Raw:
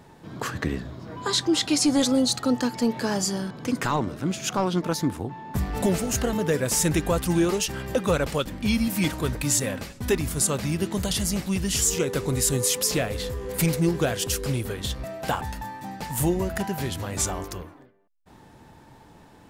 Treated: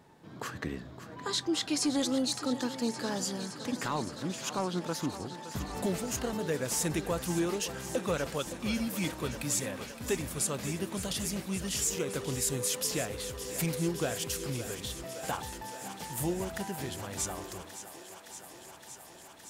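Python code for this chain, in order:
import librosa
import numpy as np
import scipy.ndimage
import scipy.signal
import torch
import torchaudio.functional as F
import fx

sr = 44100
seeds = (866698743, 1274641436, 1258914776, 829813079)

y = fx.low_shelf(x, sr, hz=71.0, db=-10.0)
y = fx.echo_thinned(y, sr, ms=566, feedback_pct=84, hz=270.0, wet_db=-12)
y = y * librosa.db_to_amplitude(-8.0)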